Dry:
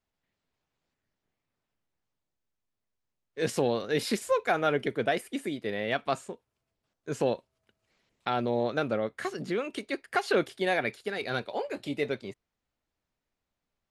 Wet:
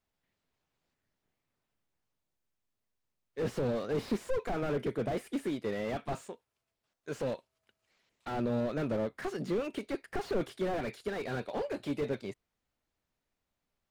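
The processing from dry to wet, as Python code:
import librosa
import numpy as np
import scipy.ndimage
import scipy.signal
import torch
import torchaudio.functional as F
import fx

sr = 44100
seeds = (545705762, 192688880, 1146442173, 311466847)

y = fx.low_shelf(x, sr, hz=460.0, db=-8.0, at=(6.21, 8.32))
y = fx.slew_limit(y, sr, full_power_hz=17.0)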